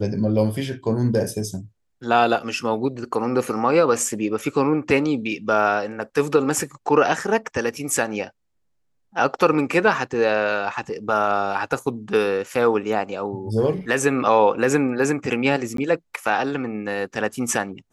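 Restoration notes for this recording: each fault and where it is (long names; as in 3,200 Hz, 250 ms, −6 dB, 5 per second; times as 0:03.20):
0:15.77–0:15.78: drop-out 13 ms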